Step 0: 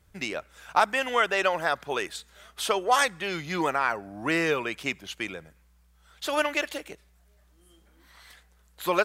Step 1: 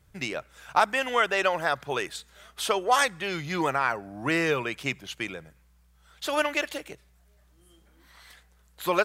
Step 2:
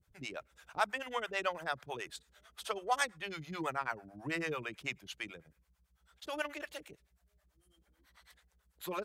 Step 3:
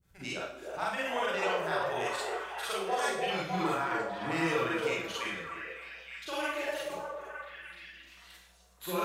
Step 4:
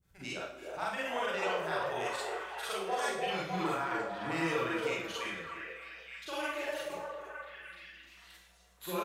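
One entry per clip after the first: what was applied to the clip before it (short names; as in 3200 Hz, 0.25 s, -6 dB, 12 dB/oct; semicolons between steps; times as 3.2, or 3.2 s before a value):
bell 130 Hz +9 dB 0.3 oct
harmonic tremolo 9.1 Hz, depth 100%, crossover 440 Hz; gain -7 dB
limiter -27 dBFS, peak gain reduction 10 dB; delay with a stepping band-pass 0.301 s, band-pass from 530 Hz, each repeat 0.7 oct, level 0 dB; Schroeder reverb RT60 0.57 s, combs from 33 ms, DRR -6.5 dB
speakerphone echo 0.34 s, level -14 dB; gain -2.5 dB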